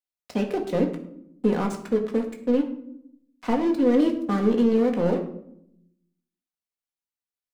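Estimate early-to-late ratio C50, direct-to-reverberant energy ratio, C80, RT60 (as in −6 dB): 9.0 dB, 2.0 dB, 12.0 dB, 0.75 s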